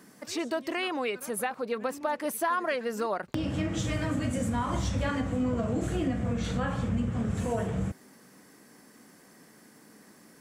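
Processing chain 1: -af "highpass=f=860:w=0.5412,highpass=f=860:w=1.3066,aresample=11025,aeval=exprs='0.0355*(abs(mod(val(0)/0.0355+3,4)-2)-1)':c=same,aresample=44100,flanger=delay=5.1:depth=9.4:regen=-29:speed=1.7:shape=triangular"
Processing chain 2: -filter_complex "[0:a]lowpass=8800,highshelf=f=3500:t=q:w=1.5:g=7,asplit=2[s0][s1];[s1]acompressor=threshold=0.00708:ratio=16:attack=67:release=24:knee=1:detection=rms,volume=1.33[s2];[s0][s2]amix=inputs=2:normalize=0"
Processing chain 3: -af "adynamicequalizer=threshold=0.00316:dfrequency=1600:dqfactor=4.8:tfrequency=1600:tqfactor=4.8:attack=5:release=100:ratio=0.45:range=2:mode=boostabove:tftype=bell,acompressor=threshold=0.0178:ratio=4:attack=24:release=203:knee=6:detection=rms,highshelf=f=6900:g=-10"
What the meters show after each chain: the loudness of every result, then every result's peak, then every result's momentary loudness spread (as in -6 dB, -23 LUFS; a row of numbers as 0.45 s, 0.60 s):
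-43.0 LUFS, -27.5 LUFS, -38.0 LUFS; -29.0 dBFS, -7.0 dBFS, -18.0 dBFS; 9 LU, 18 LU, 19 LU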